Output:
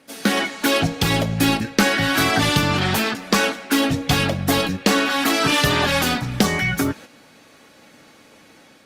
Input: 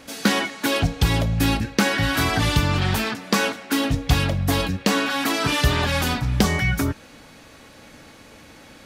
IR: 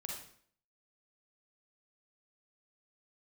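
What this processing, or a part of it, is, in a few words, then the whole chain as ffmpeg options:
video call: -af "highpass=150,bandreject=f=1k:w=20,dynaudnorm=f=130:g=5:m=4.5dB,agate=range=-7dB:threshold=-37dB:ratio=16:detection=peak" -ar 48000 -c:a libopus -b:a 32k

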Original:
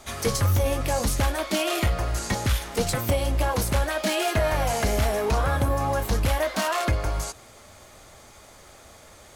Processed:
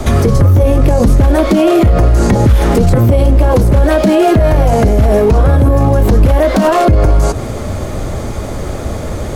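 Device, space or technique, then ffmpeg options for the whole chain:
mastering chain: -filter_complex "[0:a]equalizer=f=810:t=o:w=0.8:g=-3,acrossover=split=230|830|1900[a][b][c][d];[a]acompressor=threshold=-30dB:ratio=4[e];[b]acompressor=threshold=-31dB:ratio=4[f];[c]acompressor=threshold=-39dB:ratio=4[g];[d]acompressor=threshold=-37dB:ratio=4[h];[e][f][g][h]amix=inputs=4:normalize=0,acompressor=threshold=-33dB:ratio=2,asoftclip=type=tanh:threshold=-23dB,tiltshelf=f=850:g=10,alimiter=level_in=26.5dB:limit=-1dB:release=50:level=0:latency=1,volume=-1dB"

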